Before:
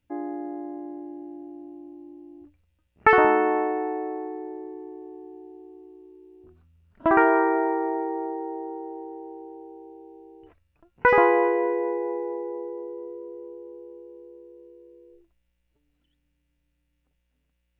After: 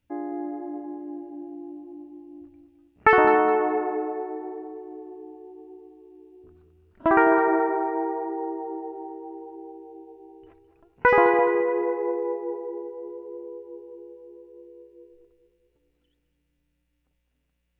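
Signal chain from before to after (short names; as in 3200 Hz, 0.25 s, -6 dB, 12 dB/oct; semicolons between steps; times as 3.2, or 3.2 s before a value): on a send: tape echo 0.21 s, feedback 57%, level -9 dB, low-pass 1800 Hz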